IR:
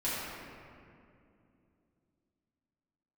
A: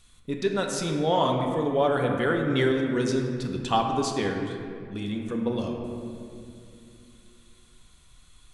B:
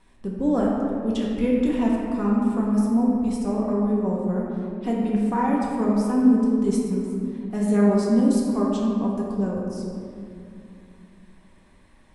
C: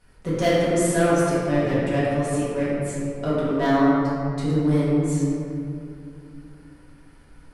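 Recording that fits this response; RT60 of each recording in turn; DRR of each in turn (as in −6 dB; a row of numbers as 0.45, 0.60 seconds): C; 2.7, 2.6, 2.6 seconds; 1.5, −4.5, −10.5 decibels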